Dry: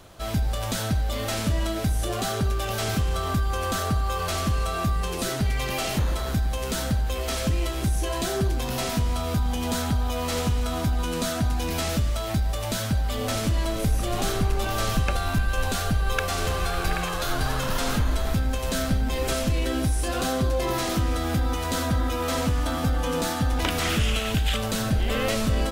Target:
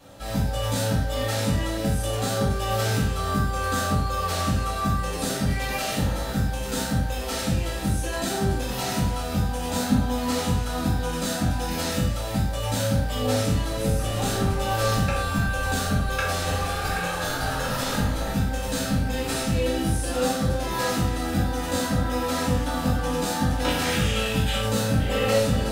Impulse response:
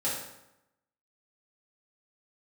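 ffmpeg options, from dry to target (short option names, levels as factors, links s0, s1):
-filter_complex "[0:a]asettb=1/sr,asplit=3[s0][s1][s2];[s0]atrim=end=9.734[s3];[s1]atrim=start=9.73:end=10.29,asetpts=PTS-STARTPTS,afade=t=in:d=0.004:c=qsin,afade=t=out:st=0.556:d=0.004:c=qsin,equalizer=f=230:t=o:w=0.25:g=14[s4];[s2]atrim=start=10.286[s5];[s3][s4]acrossfade=d=0.004:c1=hsin:c2=qsin[s6];[s6][s5]acrossfade=d=0.004:c1=qsin:c2=hsin[s7];[1:a]atrim=start_sample=2205,afade=t=out:st=0.18:d=0.01,atrim=end_sample=8379[s8];[s7][s8]afir=irnorm=-1:irlink=0,volume=0.562"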